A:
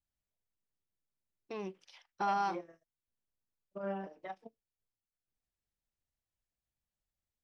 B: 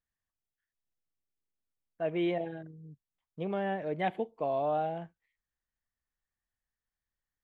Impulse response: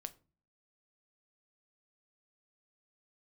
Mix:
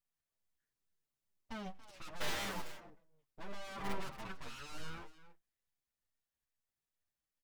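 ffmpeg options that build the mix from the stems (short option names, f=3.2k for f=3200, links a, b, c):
-filter_complex "[0:a]aeval=exprs='(mod(29.9*val(0)+1,2)-1)/29.9':c=same,volume=0dB,asplit=3[a][b][c];[b]volume=-5.5dB[d];[c]volume=-12dB[e];[1:a]highpass=190,asoftclip=type=hard:threshold=-36.5dB,volume=0dB,asplit=2[f][g];[g]volume=-16dB[h];[2:a]atrim=start_sample=2205[i];[d][i]afir=irnorm=-1:irlink=0[j];[e][h]amix=inputs=2:normalize=0,aecho=0:1:282:1[k];[a][f][j][k]amix=inputs=4:normalize=0,aeval=exprs='abs(val(0))':c=same,asplit=2[l][m];[m]adelay=7.6,afreqshift=-2.3[n];[l][n]amix=inputs=2:normalize=1"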